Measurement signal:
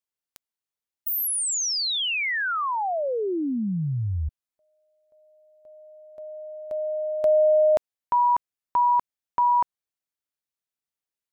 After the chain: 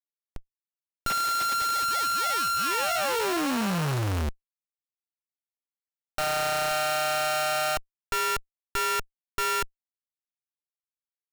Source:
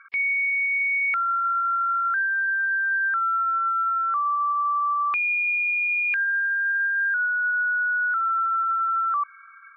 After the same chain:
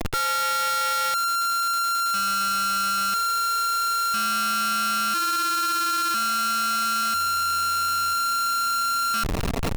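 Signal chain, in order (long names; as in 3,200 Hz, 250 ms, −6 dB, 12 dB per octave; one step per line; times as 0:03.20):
samples sorted by size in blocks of 32 samples
comparator with hysteresis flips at −42 dBFS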